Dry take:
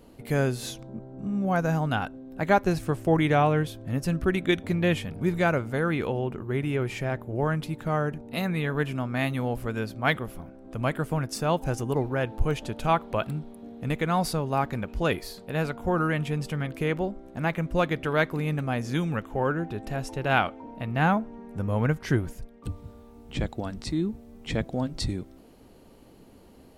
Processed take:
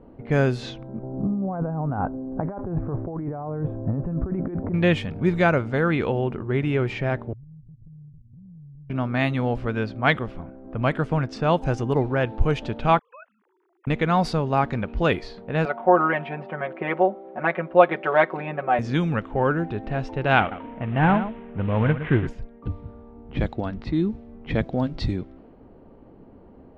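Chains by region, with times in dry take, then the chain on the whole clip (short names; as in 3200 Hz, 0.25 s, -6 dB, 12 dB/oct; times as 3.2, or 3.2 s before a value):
1.03–4.74 negative-ratio compressor -31 dBFS + LPF 1100 Hz 24 dB/oct
7.33–8.9 inverse Chebyshev low-pass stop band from 540 Hz, stop band 70 dB + compressor 5:1, threshold -48 dBFS
12.99–13.87 sine-wave speech + HPF 1100 Hz + level quantiser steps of 24 dB
15.65–18.79 BPF 380–2000 Hz + bell 670 Hz +6 dB 0.58 oct + comb 5.4 ms, depth 95%
20.4–22.27 CVSD 16 kbps + echo 0.114 s -11 dB
whole clip: low-pass opened by the level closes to 1100 Hz, open at -21.5 dBFS; LPF 4300 Hz 12 dB/oct; gain +4.5 dB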